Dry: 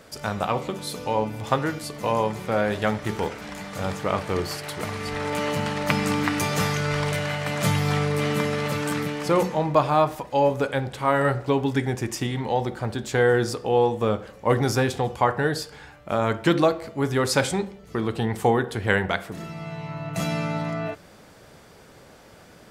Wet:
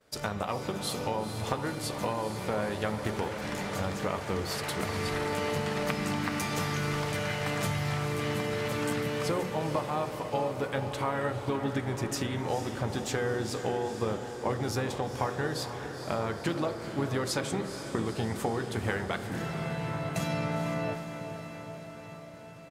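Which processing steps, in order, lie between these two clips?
compression, threshold -29 dBFS, peak gain reduction 15 dB; harmony voices -4 st -10 dB; expander -39 dBFS; echo that smears into a reverb 467 ms, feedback 69%, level -9 dB

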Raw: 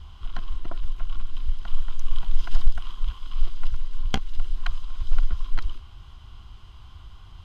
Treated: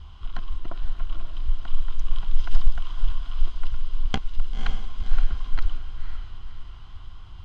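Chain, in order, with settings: distance through air 51 m; echo that smears into a reverb 530 ms, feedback 43%, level -8 dB

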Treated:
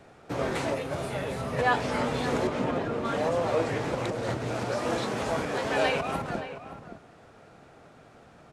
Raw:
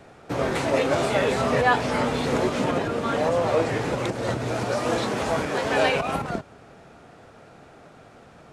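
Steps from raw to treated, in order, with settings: 0.74–1.58 s: time-frequency box 200–8800 Hz -7 dB; 2.47–3.05 s: treble shelf 3.9 kHz -10 dB; echo from a far wall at 98 m, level -11 dB; 3.74–4.94 s: loudspeaker Doppler distortion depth 0.17 ms; trim -4.5 dB

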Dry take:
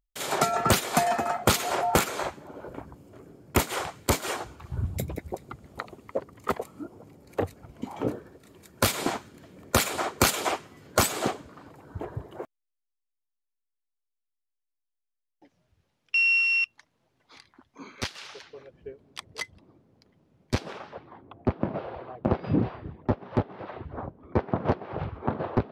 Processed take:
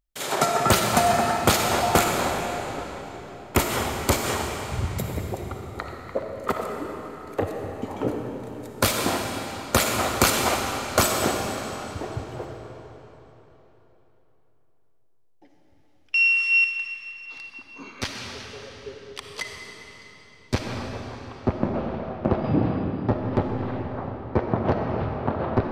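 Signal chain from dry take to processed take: algorithmic reverb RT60 3.7 s, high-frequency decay 0.9×, pre-delay 15 ms, DRR 1.5 dB; trim +2 dB

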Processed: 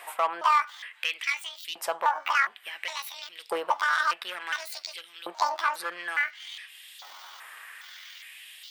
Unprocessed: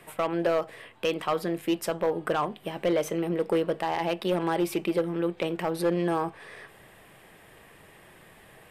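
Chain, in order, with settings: pitch shift switched off and on +10.5 st, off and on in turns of 411 ms; LFO high-pass saw up 0.57 Hz 770–3800 Hz; tape noise reduction on one side only encoder only

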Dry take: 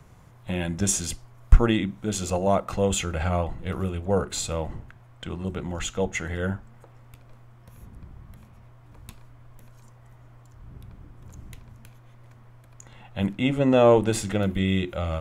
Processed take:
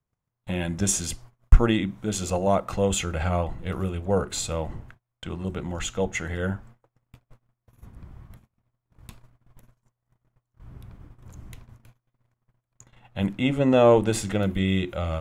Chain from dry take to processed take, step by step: gate -45 dBFS, range -33 dB

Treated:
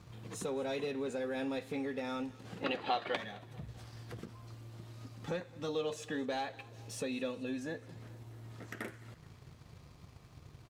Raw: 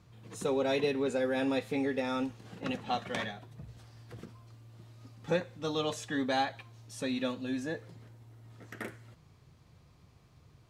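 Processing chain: waveshaping leveller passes 1; 2.64–3.16 s: time-frequency box 260–5000 Hz +12 dB; 5.68–7.58 s: small resonant body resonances 460/2600 Hz, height 9 dB, ringing for 25 ms; compression 2:1, threshold -54 dBFS, peak gain reduction 21.5 dB; feedback delay 215 ms, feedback 58%, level -22 dB; trim +5.5 dB

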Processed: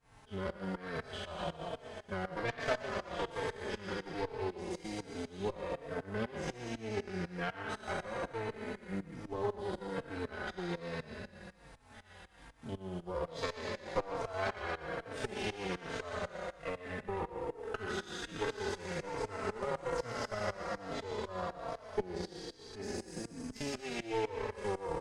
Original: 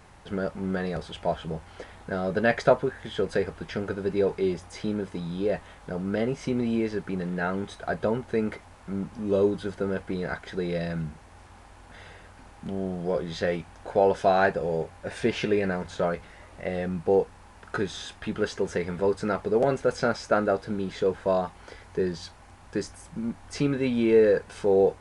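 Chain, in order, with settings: spectral sustain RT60 1.96 s; Chebyshev shaper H 3 -11 dB, 5 -26 dB, 6 -20 dB, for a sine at -3.5 dBFS; compression 4:1, threshold -30 dBFS, peak gain reduction 13.5 dB; thinning echo 120 ms, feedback 69%, high-pass 800 Hz, level -4 dB; tremolo saw up 4 Hz, depth 85%; transient shaper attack +4 dB, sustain -5 dB; endless flanger 3.9 ms -1.2 Hz; trim +1.5 dB

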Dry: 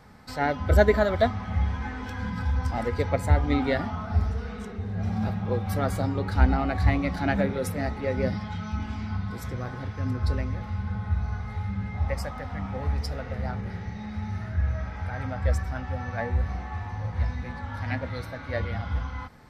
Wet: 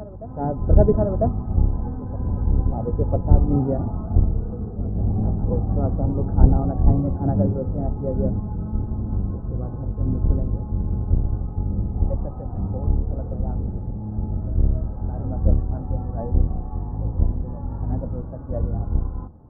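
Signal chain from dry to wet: octave divider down 1 oct, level +2 dB; Bessel low-pass 600 Hz, order 8; on a send: reverse echo 999 ms -16 dB; on the sum: trim +3 dB

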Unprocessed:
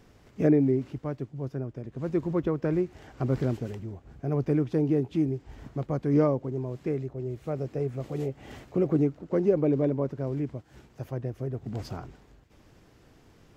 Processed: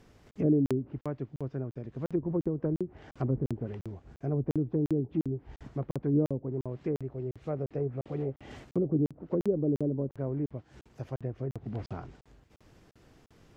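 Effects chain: low-pass that closes with the level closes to 400 Hz, closed at -22.5 dBFS; crackling interface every 0.35 s, samples 2048, zero, from 0.31 s; trim -2 dB

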